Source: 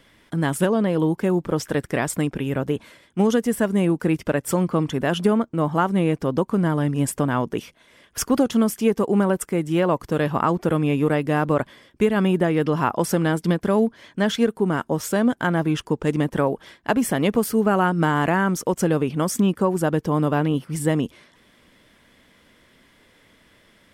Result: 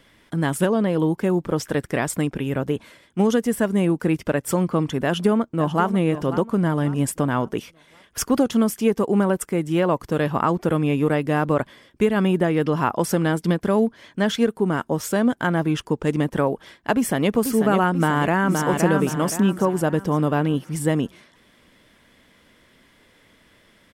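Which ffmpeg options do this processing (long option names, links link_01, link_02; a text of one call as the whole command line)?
ffmpeg -i in.wav -filter_complex "[0:a]asplit=2[link_01][link_02];[link_02]afade=type=in:start_time=5.05:duration=0.01,afade=type=out:start_time=5.88:duration=0.01,aecho=0:1:540|1080|1620|2160:0.237137|0.0948549|0.037942|0.0151768[link_03];[link_01][link_03]amix=inputs=2:normalize=0,asplit=2[link_04][link_05];[link_05]afade=type=in:start_time=16.94:duration=0.01,afade=type=out:start_time=17.35:duration=0.01,aecho=0:1:490|980|1470|1960|2450|2940|3430|3920:0.446684|0.26801|0.160806|0.0964837|0.0578902|0.0347341|0.0208405|0.0125043[link_06];[link_04][link_06]amix=inputs=2:normalize=0,asplit=2[link_07][link_08];[link_08]afade=type=in:start_time=17.95:duration=0.01,afade=type=out:start_time=18.63:duration=0.01,aecho=0:1:520|1040|1560|2080|2600:0.630957|0.252383|0.100953|0.0403813|0.0161525[link_09];[link_07][link_09]amix=inputs=2:normalize=0" out.wav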